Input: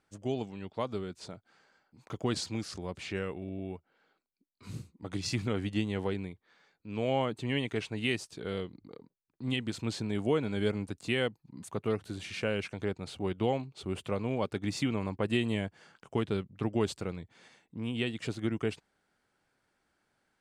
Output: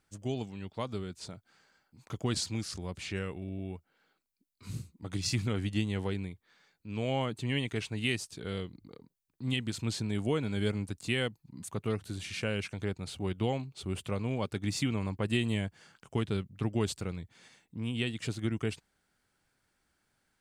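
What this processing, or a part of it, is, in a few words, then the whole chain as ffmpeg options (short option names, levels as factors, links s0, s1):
smiley-face EQ: -af "lowshelf=f=120:g=6.5,equalizer=f=540:t=o:w=2.4:g=-4,highshelf=f=6300:g=7.5"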